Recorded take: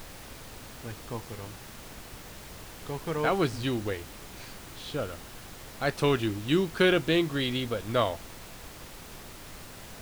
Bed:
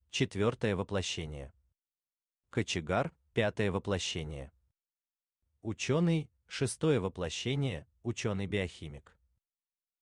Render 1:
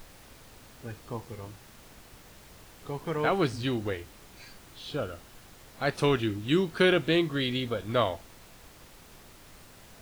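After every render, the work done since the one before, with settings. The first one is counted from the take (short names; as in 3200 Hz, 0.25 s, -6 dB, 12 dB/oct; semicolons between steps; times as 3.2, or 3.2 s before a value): noise print and reduce 7 dB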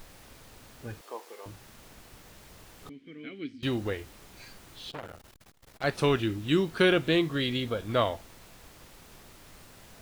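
1.01–1.46 HPF 400 Hz 24 dB/oct; 2.89–3.63 vowel filter i; 4.9–5.84 core saturation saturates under 2700 Hz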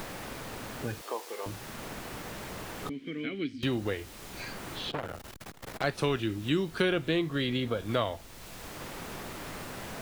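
three-band squash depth 70%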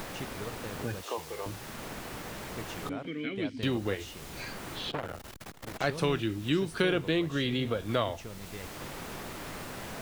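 add bed -11 dB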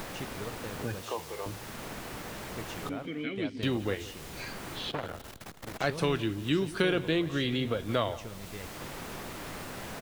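feedback echo 0.171 s, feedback 43%, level -18.5 dB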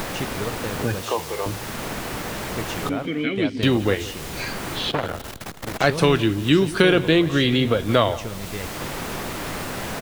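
gain +11 dB; limiter -1 dBFS, peak gain reduction 1 dB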